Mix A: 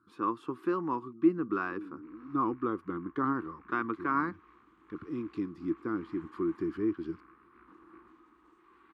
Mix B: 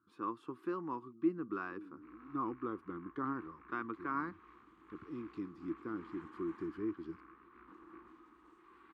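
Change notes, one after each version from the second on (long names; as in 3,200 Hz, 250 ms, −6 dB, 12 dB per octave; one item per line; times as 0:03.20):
speech −8.0 dB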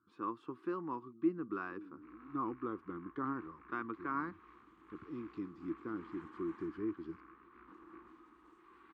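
speech: add high-frequency loss of the air 60 metres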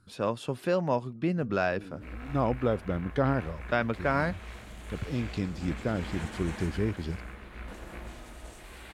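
background: send +9.5 dB
master: remove pair of resonant band-passes 610 Hz, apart 1.8 octaves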